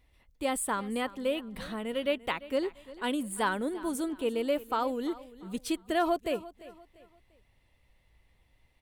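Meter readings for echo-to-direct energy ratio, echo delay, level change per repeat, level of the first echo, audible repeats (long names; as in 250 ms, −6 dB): −17.5 dB, 345 ms, −9.0 dB, −18.0 dB, 2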